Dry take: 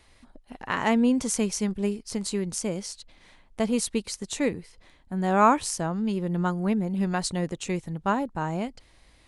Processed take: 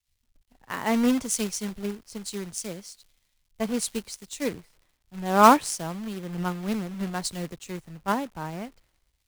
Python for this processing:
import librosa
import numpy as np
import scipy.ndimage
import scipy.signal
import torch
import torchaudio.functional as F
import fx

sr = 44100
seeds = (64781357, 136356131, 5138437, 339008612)

y = fx.quant_companded(x, sr, bits=4)
y = fx.dmg_crackle(y, sr, seeds[0], per_s=130.0, level_db=-35.0)
y = fx.band_widen(y, sr, depth_pct=100)
y = y * 10.0 ** (-4.5 / 20.0)